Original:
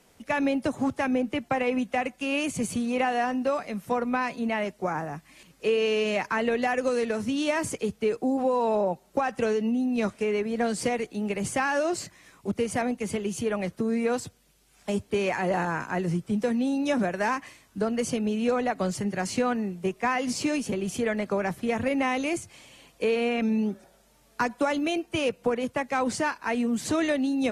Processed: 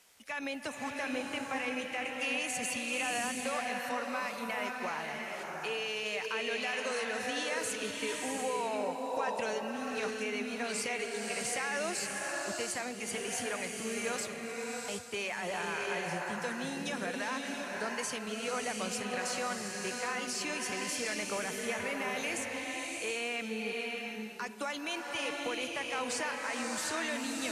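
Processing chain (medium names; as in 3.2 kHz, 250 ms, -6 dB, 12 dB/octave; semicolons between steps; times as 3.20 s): tilt shelf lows -9.5 dB, about 680 Hz; peak limiter -19 dBFS, peak gain reduction 10.5 dB; swelling reverb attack 700 ms, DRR 0.5 dB; trim -8.5 dB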